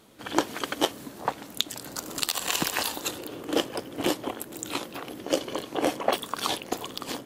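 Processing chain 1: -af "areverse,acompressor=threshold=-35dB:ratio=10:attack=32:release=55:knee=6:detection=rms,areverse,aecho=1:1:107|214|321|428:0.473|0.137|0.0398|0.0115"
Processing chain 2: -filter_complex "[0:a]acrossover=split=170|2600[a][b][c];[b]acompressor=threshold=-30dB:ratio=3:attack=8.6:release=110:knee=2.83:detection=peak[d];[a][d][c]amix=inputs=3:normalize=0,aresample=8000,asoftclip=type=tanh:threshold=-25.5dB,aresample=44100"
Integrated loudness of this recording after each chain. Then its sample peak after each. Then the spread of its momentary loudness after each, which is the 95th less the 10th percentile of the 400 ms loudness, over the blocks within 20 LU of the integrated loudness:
-36.0, -36.5 LUFS; -13.5, -18.5 dBFS; 5, 6 LU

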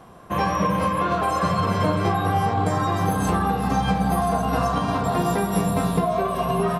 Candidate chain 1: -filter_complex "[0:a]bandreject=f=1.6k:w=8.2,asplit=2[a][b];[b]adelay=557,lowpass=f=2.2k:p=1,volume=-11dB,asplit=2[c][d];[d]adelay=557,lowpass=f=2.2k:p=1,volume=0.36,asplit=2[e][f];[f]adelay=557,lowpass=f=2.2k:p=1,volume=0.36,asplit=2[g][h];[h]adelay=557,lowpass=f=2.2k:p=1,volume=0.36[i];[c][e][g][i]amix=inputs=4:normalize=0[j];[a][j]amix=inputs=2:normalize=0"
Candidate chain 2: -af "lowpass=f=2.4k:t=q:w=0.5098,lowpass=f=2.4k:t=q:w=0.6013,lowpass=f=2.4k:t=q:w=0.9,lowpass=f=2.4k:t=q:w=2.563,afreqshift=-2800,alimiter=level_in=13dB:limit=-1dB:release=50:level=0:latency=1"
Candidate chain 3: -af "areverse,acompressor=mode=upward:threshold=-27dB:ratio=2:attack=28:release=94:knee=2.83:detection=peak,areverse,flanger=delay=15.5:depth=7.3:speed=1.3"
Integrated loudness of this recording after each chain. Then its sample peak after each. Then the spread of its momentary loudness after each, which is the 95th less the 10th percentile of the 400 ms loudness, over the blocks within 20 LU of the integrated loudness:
-22.5, -7.5, -25.0 LUFS; -8.5, -1.0, -11.5 dBFS; 2, 1, 2 LU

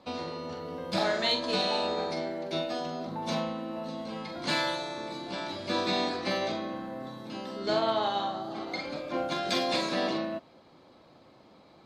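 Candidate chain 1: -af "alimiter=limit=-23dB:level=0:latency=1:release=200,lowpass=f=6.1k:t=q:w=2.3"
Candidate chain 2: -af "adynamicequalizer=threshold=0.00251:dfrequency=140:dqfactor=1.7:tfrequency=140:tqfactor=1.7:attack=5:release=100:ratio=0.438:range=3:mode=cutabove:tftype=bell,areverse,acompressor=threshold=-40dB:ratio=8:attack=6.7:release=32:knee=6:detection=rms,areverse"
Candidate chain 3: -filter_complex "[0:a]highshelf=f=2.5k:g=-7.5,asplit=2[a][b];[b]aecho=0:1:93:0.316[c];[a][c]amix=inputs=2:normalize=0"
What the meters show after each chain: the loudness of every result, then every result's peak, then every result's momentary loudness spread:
-33.0, -42.0, -33.0 LUFS; -17.5, -30.0, -17.0 dBFS; 8, 7, 10 LU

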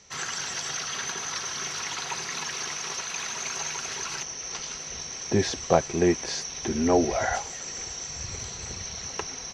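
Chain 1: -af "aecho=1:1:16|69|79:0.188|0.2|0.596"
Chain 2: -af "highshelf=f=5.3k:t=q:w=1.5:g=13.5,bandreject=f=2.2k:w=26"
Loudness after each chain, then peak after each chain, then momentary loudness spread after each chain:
-27.5, -22.5 LUFS; -4.0, -4.5 dBFS; 10, 4 LU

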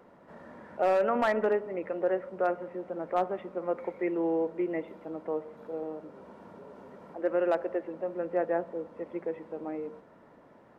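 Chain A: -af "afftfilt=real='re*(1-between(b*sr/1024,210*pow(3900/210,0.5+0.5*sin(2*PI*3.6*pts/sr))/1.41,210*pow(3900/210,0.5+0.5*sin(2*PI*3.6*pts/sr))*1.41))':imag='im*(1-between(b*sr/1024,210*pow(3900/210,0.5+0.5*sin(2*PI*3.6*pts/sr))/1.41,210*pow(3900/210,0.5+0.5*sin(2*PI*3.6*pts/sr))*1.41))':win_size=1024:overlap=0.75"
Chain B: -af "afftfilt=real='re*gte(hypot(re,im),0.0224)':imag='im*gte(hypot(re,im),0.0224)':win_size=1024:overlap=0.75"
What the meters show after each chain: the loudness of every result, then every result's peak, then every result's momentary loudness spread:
-33.0, -31.5 LUFS; -17.0, -16.0 dBFS; 22, 13 LU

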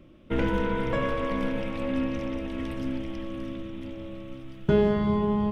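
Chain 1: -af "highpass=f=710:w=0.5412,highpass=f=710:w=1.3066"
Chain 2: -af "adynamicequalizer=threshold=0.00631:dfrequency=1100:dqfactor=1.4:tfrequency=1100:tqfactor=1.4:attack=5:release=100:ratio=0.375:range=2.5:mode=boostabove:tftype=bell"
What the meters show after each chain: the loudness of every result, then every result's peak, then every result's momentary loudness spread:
-37.0, -27.5 LUFS; -20.0, -9.5 dBFS; 18, 15 LU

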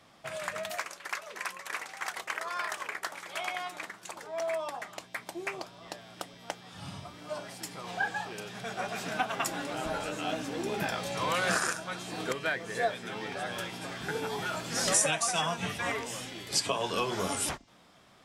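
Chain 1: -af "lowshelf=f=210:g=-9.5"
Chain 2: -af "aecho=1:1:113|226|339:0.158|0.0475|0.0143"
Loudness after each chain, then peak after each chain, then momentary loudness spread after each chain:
-34.0, -33.0 LUFS; -12.0, -12.0 dBFS; 13, 13 LU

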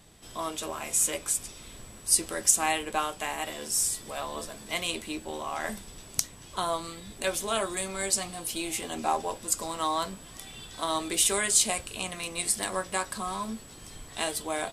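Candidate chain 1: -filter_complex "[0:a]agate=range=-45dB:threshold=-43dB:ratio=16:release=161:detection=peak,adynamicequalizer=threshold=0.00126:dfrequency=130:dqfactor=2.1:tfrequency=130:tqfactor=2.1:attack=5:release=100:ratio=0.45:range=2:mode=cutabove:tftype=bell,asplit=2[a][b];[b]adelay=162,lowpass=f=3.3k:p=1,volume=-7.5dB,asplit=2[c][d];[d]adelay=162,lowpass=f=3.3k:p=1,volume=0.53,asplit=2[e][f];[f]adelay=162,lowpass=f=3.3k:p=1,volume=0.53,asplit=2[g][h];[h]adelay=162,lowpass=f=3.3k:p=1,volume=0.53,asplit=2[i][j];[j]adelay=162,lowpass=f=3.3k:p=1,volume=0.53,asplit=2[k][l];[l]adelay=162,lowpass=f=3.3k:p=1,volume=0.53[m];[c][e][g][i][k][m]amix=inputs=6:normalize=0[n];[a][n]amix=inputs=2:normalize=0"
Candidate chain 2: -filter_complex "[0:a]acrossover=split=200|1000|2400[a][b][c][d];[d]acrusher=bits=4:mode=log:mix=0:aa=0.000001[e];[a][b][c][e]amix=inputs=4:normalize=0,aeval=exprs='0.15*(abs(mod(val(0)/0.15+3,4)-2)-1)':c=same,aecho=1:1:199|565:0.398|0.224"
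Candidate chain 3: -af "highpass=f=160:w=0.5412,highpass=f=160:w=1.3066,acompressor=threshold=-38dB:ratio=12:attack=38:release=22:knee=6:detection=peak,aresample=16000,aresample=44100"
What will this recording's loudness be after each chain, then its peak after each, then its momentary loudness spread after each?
-28.5, -29.0, -37.0 LUFS; -1.5, -14.0, -9.5 dBFS; 14, 12, 8 LU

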